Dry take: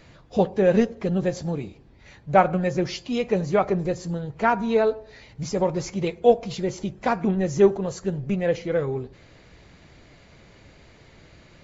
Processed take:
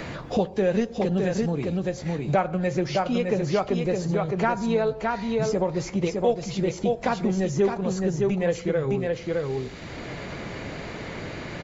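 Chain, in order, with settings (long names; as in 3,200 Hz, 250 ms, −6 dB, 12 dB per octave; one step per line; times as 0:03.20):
in parallel at +1 dB: downward compressor, threshold −28 dBFS, peak gain reduction 16.5 dB
on the sum: single-tap delay 612 ms −5 dB
multiband upward and downward compressor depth 70%
level −5 dB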